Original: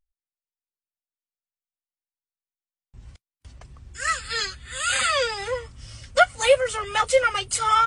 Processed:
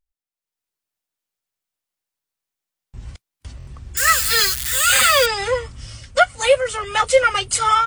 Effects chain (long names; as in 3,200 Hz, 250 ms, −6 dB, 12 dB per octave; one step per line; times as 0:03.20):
0:03.97–0:05.26: spike at every zero crossing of −22 dBFS
automatic gain control gain up to 11 dB
buffer that repeats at 0:03.58, samples 1,024, times 3
level −1 dB